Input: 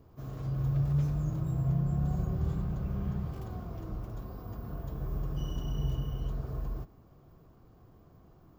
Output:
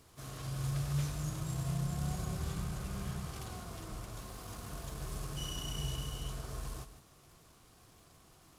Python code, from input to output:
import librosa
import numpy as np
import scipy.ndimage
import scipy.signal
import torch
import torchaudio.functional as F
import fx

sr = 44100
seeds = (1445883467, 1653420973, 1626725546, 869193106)

y = fx.cvsd(x, sr, bps=64000)
y = fx.tilt_shelf(y, sr, db=-9.0, hz=1100.0)
y = fx.dmg_crackle(y, sr, seeds[0], per_s=220.0, level_db=-62.0)
y = y + 10.0 ** (-12.5 / 20.0) * np.pad(y, (int(155 * sr / 1000.0), 0))[:len(y)]
y = F.gain(torch.from_numpy(y), 2.0).numpy()